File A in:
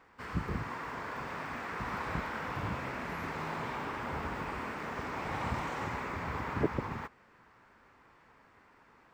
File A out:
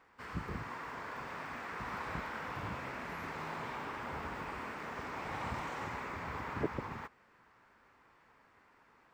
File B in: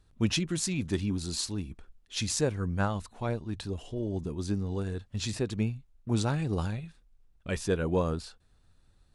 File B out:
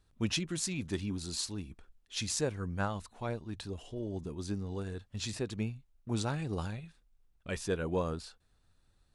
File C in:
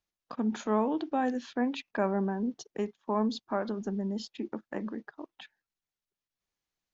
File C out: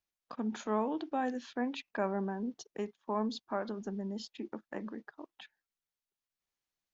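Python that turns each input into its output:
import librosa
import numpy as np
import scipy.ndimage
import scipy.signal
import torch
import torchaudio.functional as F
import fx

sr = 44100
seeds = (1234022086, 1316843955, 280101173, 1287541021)

y = fx.low_shelf(x, sr, hz=390.0, db=-3.5)
y = F.gain(torch.from_numpy(y), -3.0).numpy()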